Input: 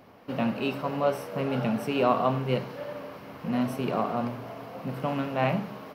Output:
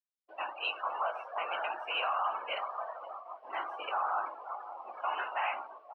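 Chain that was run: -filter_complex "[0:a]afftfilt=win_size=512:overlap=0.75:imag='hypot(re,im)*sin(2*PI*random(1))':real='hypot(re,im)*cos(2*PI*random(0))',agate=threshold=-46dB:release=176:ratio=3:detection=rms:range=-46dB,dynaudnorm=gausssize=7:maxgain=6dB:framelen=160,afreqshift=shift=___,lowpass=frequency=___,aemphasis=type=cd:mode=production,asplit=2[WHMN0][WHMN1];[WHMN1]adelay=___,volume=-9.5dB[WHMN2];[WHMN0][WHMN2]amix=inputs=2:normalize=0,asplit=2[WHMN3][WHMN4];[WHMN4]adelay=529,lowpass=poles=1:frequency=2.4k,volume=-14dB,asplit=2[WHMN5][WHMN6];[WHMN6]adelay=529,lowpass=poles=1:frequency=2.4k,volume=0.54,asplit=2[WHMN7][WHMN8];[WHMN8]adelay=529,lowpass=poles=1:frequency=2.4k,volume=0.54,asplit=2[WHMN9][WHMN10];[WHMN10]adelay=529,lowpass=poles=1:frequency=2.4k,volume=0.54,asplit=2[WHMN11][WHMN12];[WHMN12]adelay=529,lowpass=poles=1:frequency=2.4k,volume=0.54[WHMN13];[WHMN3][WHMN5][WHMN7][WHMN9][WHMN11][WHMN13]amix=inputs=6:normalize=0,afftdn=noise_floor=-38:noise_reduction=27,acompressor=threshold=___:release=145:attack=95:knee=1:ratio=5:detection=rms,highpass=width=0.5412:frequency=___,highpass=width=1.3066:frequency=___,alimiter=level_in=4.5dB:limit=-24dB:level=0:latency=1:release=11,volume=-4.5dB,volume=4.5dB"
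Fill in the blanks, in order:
56, 3.1k, 18, -27dB, 880, 880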